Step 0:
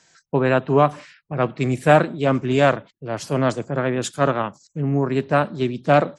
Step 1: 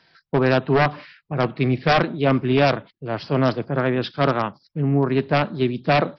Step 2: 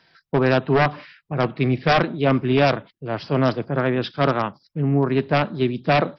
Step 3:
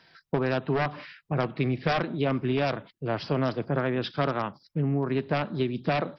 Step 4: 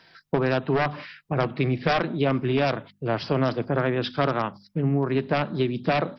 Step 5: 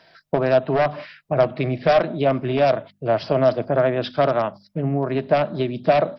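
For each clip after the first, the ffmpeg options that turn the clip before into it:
-af "equalizer=f=560:t=o:w=0.32:g=-2.5,aresample=11025,aeval=exprs='0.282*(abs(mod(val(0)/0.282+3,4)-2)-1)':c=same,aresample=44100,volume=1.19"
-af "bandreject=f=4300:w=23"
-af "acompressor=threshold=0.0708:ratio=6"
-af "bandreject=f=50:t=h:w=6,bandreject=f=100:t=h:w=6,bandreject=f=150:t=h:w=6,bandreject=f=200:t=h:w=6,bandreject=f=250:t=h:w=6,volume=1.5"
-af "equalizer=f=630:w=4.1:g=13.5"

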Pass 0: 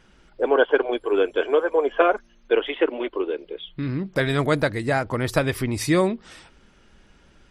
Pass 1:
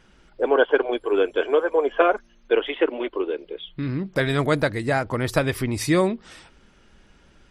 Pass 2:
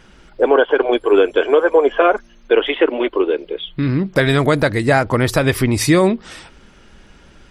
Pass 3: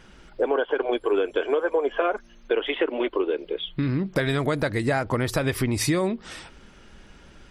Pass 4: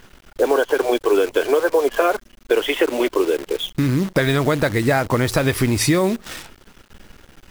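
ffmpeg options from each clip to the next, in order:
-af anull
-af "alimiter=limit=0.251:level=0:latency=1:release=86,volume=2.82"
-af "acompressor=threshold=0.126:ratio=3,volume=0.668"
-af "acrusher=bits=7:dc=4:mix=0:aa=0.000001,volume=2"

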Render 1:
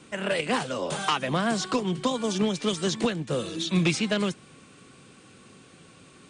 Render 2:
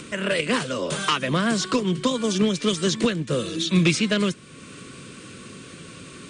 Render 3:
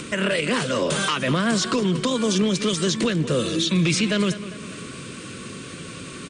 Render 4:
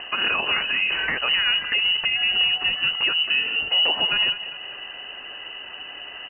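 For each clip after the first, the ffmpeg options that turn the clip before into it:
-filter_complex "[0:a]equalizer=f=790:t=o:w=0.36:g=-14.5,asplit=2[s0][s1];[s1]acompressor=mode=upward:threshold=0.0355:ratio=2.5,volume=0.708[s2];[s0][s2]amix=inputs=2:normalize=0"
-filter_complex "[0:a]asplit=2[s0][s1];[s1]adelay=200,lowpass=f=4100:p=1,volume=0.126,asplit=2[s2][s3];[s3]adelay=200,lowpass=f=4100:p=1,volume=0.54,asplit=2[s4][s5];[s5]adelay=200,lowpass=f=4100:p=1,volume=0.54,asplit=2[s6][s7];[s7]adelay=200,lowpass=f=4100:p=1,volume=0.54,asplit=2[s8][s9];[s9]adelay=200,lowpass=f=4100:p=1,volume=0.54[s10];[s0][s2][s4][s6][s8][s10]amix=inputs=6:normalize=0,alimiter=limit=0.126:level=0:latency=1:release=37,volume=1.78"
-af "lowpass=f=2600:t=q:w=0.5098,lowpass=f=2600:t=q:w=0.6013,lowpass=f=2600:t=q:w=0.9,lowpass=f=2600:t=q:w=2.563,afreqshift=-3100"

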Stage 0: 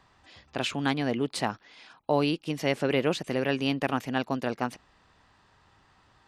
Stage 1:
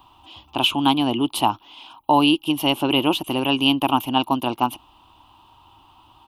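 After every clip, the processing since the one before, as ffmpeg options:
-af "firequalizer=gain_entry='entry(100,0);entry(170,-8);entry(320,6);entry(450,-11);entry(920,10);entry(1800,-20);entry(2900,10);entry(4500,-7);entry(7700,-7);entry(11000,14)':delay=0.05:min_phase=1,volume=2.24"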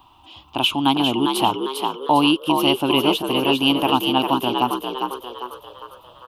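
-filter_complex "[0:a]asplit=7[s0][s1][s2][s3][s4][s5][s6];[s1]adelay=401,afreqshift=62,volume=0.562[s7];[s2]adelay=802,afreqshift=124,volume=0.26[s8];[s3]adelay=1203,afreqshift=186,volume=0.119[s9];[s4]adelay=1604,afreqshift=248,volume=0.055[s10];[s5]adelay=2005,afreqshift=310,volume=0.0251[s11];[s6]adelay=2406,afreqshift=372,volume=0.0116[s12];[s0][s7][s8][s9][s10][s11][s12]amix=inputs=7:normalize=0"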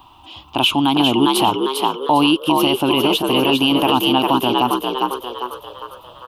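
-af "alimiter=limit=0.299:level=0:latency=1:release=27,volume=1.88"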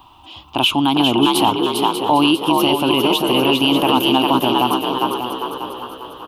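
-af "aecho=1:1:592|1184|1776|2368:0.355|0.117|0.0386|0.0128"

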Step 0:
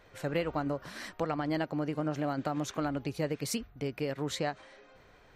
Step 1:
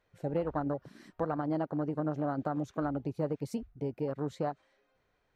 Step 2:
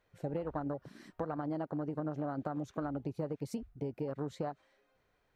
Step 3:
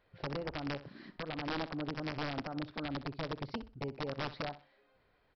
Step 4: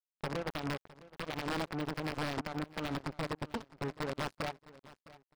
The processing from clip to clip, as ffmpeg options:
-af "afwtdn=0.0158"
-af "acompressor=threshold=0.0224:ratio=6"
-af "alimiter=level_in=2.51:limit=0.0631:level=0:latency=1:release=371,volume=0.398,aresample=11025,aeval=exprs='(mod(50.1*val(0)+1,2)-1)/50.1':c=same,aresample=44100,aecho=1:1:63|126|189:0.188|0.0509|0.0137,volume=1.5"
-af "aeval=exprs='0.0501*(cos(1*acos(clip(val(0)/0.0501,-1,1)))-cos(1*PI/2))+0.00178*(cos(5*acos(clip(val(0)/0.0501,-1,1)))-cos(5*PI/2))':c=same,acrusher=bits=5:mix=0:aa=0.5,aecho=1:1:660|1320:0.112|0.0314"

